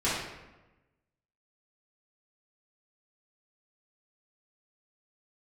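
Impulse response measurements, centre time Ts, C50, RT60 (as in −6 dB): 70 ms, 0.0 dB, 1.1 s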